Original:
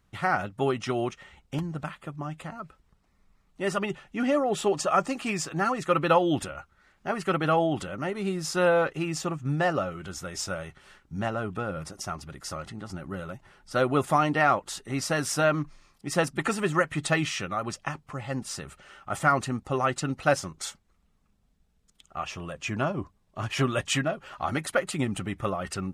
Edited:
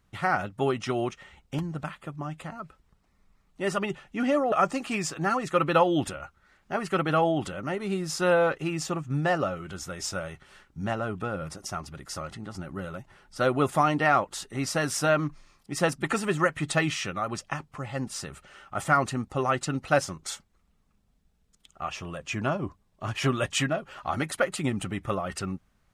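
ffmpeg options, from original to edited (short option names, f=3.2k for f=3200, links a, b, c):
-filter_complex "[0:a]asplit=2[a][b];[a]atrim=end=4.522[c];[b]atrim=start=4.868[d];[c][d]acrossfade=d=0.004:c1=hsin:c2=hsin"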